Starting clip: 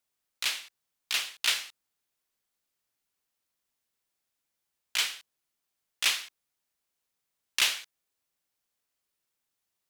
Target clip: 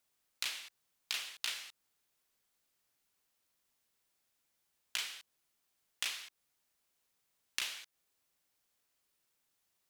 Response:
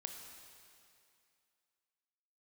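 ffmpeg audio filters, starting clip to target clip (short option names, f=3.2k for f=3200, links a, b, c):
-af "acompressor=threshold=-38dB:ratio=10,volume=3dB"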